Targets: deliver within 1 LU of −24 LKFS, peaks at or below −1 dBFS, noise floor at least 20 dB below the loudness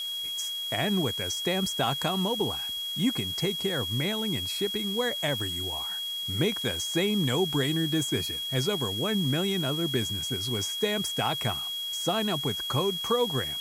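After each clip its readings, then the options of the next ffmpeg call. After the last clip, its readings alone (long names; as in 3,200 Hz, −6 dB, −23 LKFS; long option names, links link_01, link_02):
interfering tone 3,300 Hz; level of the tone −31 dBFS; background noise floor −34 dBFS; target noise floor −48 dBFS; integrated loudness −27.5 LKFS; sample peak −13.5 dBFS; target loudness −24.0 LKFS
→ -af "bandreject=frequency=3300:width=30"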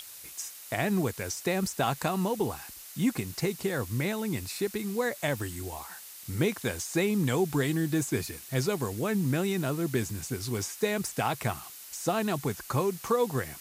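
interfering tone none found; background noise floor −46 dBFS; target noise floor −51 dBFS
→ -af "afftdn=noise_reduction=6:noise_floor=-46"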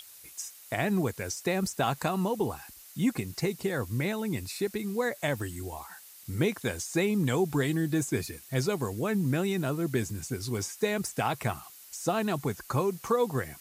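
background noise floor −51 dBFS; integrated loudness −30.5 LKFS; sample peak −14.5 dBFS; target loudness −24.0 LKFS
→ -af "volume=6.5dB"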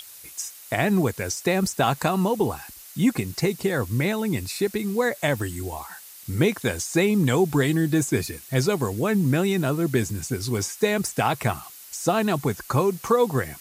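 integrated loudness −24.0 LKFS; sample peak −8.0 dBFS; background noise floor −44 dBFS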